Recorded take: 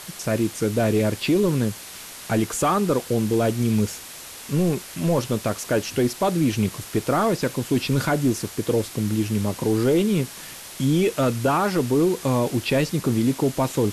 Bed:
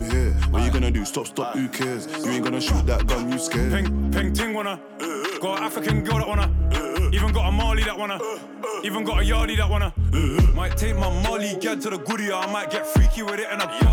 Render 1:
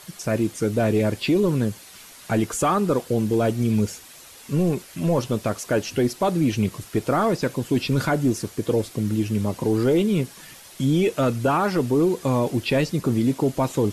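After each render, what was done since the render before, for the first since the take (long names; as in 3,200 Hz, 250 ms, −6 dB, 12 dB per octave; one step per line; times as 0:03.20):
broadband denoise 8 dB, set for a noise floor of −39 dBFS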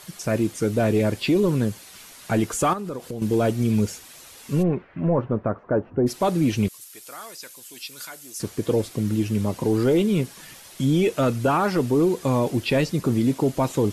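0:02.73–0:03.22: downward compressor, threshold −28 dBFS
0:04.62–0:06.06: low-pass filter 2,400 Hz → 1,100 Hz 24 dB per octave
0:06.68–0:08.40: first difference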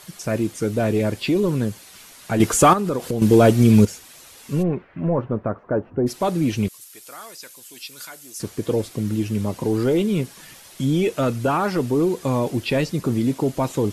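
0:02.40–0:03.85: clip gain +8 dB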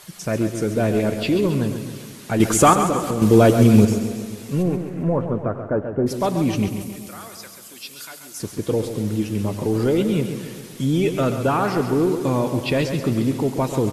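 repeating echo 135 ms, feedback 54%, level −9 dB
feedback echo with a swinging delay time 98 ms, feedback 75%, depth 95 cents, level −17.5 dB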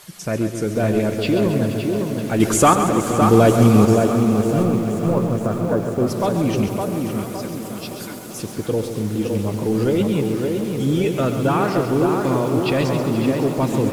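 tape delay 562 ms, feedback 49%, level −3 dB, low-pass 1,800 Hz
feedback echo at a low word length 475 ms, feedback 80%, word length 6 bits, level −14 dB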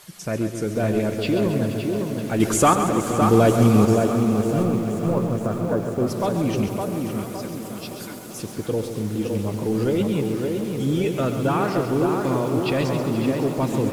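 level −3 dB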